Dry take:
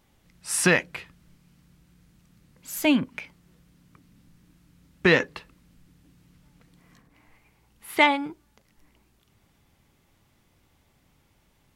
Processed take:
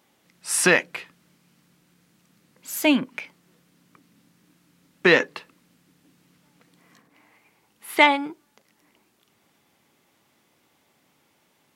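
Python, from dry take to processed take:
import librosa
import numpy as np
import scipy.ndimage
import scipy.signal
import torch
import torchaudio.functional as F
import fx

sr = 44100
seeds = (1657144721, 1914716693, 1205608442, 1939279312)

y = scipy.signal.sosfilt(scipy.signal.butter(2, 240.0, 'highpass', fs=sr, output='sos'), x)
y = F.gain(torch.from_numpy(y), 3.0).numpy()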